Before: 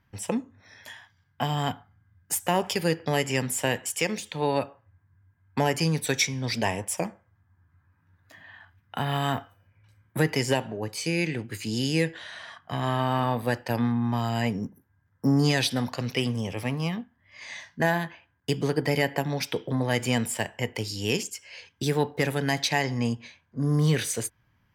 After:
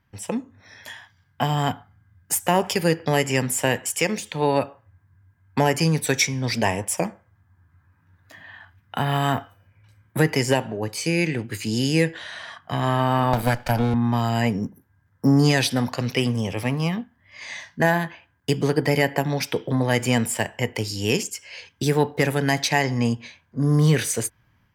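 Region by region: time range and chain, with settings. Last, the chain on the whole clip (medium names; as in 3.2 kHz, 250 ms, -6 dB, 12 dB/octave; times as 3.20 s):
13.33–13.94 s: comb filter that takes the minimum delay 1.3 ms + three bands compressed up and down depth 100%
whole clip: dynamic bell 3.7 kHz, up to -4 dB, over -43 dBFS, Q 2.1; level rider gain up to 5 dB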